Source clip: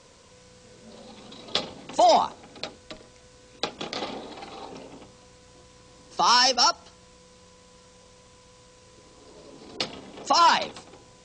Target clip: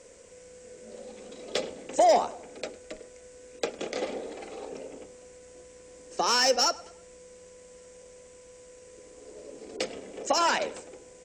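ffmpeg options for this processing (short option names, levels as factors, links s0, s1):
-filter_complex "[0:a]equalizer=f=125:t=o:w=1:g=-9,equalizer=f=500:t=o:w=1:g=10,equalizer=f=1000:t=o:w=1:g=-9,equalizer=f=2000:t=o:w=1:g=5,equalizer=f=4000:t=o:w=1:g=-10,equalizer=f=8000:t=o:w=1:g=9,asplit=2[s0][s1];[s1]adelay=104,lowpass=f=4000:p=1,volume=0.1,asplit=2[s2][s3];[s3]adelay=104,lowpass=f=4000:p=1,volume=0.42,asplit=2[s4][s5];[s5]adelay=104,lowpass=f=4000:p=1,volume=0.42[s6];[s0][s2][s4][s6]amix=inputs=4:normalize=0,aeval=exprs='0.473*(cos(1*acos(clip(val(0)/0.473,-1,1)))-cos(1*PI/2))+0.0237*(cos(5*acos(clip(val(0)/0.473,-1,1)))-cos(5*PI/2))':c=same,volume=0.631"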